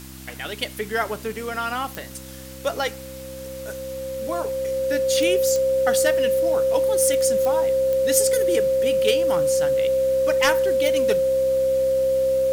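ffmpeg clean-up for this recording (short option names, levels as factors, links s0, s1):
-af "adeclick=t=4,bandreject=f=65.3:t=h:w=4,bandreject=f=130.6:t=h:w=4,bandreject=f=195.9:t=h:w=4,bandreject=f=261.2:t=h:w=4,bandreject=f=326.5:t=h:w=4,bandreject=f=530:w=30,afftdn=nr=30:nf=-37"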